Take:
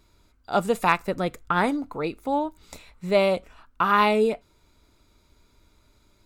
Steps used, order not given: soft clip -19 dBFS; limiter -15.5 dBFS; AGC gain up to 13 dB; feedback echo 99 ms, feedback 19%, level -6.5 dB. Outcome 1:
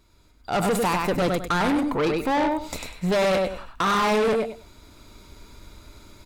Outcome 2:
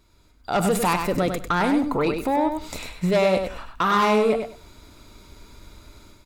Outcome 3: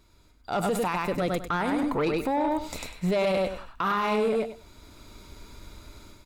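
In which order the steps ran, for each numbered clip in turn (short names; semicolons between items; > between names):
limiter > feedback echo > AGC > soft clip; soft clip > AGC > limiter > feedback echo; AGC > feedback echo > limiter > soft clip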